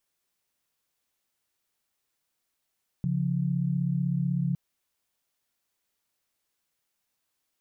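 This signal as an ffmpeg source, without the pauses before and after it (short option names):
-f lavfi -i "aevalsrc='0.0447*(sin(2*PI*138.59*t)+sin(2*PI*174.61*t))':d=1.51:s=44100"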